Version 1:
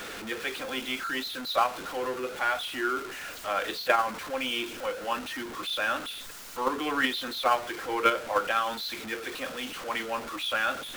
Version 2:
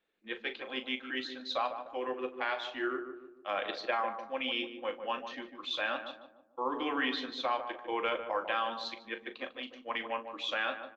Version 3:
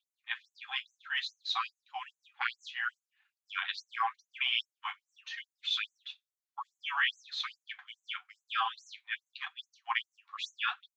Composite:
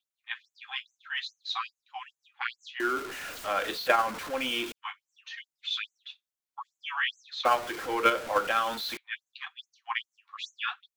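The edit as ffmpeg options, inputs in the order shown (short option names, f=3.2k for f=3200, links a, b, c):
-filter_complex "[0:a]asplit=2[a][b];[2:a]asplit=3[c][d][e];[c]atrim=end=2.802[f];[a]atrim=start=2.798:end=4.722[g];[d]atrim=start=4.718:end=7.452[h];[b]atrim=start=7.448:end=8.972[i];[e]atrim=start=8.968[j];[f][g]acrossfade=d=0.004:c1=hsin:c2=hsin[k];[k][h]acrossfade=d=0.004:c1=hsin:c2=hsin[l];[l][i]acrossfade=d=0.004:c1=hsin:c2=hsin[m];[m][j]acrossfade=d=0.004:c1=hsin:c2=hsin"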